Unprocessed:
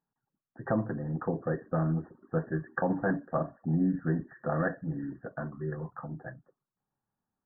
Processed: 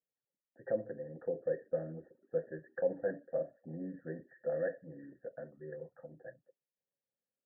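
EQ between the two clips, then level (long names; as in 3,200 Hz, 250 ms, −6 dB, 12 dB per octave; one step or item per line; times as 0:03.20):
formant filter e
high-frequency loss of the air 390 metres
low-shelf EQ 150 Hz +11.5 dB
+3.0 dB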